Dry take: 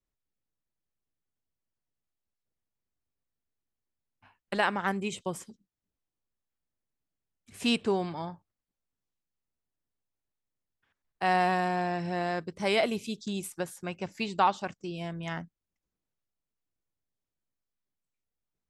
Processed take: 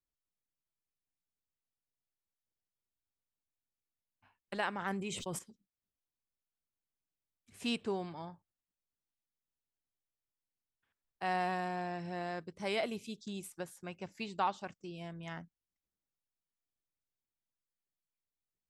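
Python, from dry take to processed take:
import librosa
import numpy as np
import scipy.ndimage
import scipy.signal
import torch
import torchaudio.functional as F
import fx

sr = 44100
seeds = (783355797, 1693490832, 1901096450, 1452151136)

y = fx.sustainer(x, sr, db_per_s=30.0, at=(4.7, 5.39))
y = y * librosa.db_to_amplitude(-8.5)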